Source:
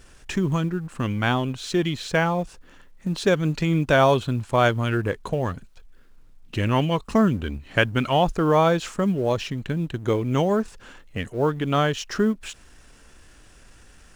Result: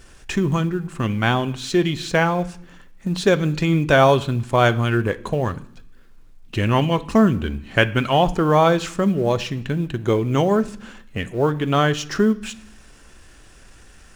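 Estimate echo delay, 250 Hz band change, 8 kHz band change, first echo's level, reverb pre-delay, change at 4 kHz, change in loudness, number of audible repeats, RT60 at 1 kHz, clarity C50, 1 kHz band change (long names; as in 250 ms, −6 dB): no echo audible, +3.5 dB, +3.5 dB, no echo audible, 3 ms, +3.5 dB, +3.5 dB, no echo audible, 0.65 s, 18.5 dB, +3.5 dB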